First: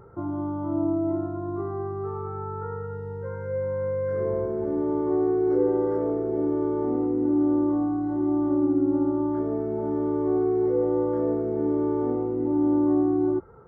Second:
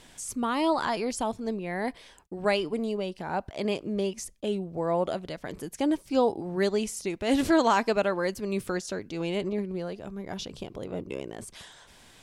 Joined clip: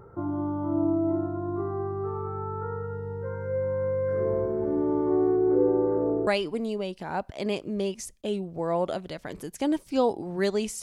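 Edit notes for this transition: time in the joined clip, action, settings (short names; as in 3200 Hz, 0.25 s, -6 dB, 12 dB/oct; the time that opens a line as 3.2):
first
5.36–6.27 LPF 1700 Hz -> 1100 Hz
6.27 switch to second from 2.46 s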